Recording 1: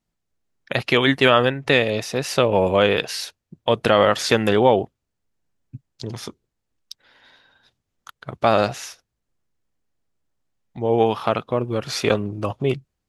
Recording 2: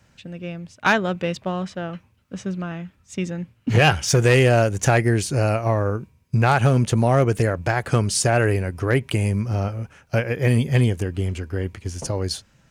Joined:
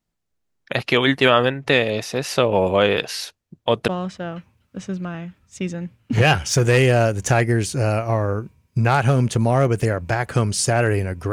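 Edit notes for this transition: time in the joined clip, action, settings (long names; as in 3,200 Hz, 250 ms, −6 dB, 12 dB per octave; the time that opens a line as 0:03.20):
recording 1
0:03.88: continue with recording 2 from 0:01.45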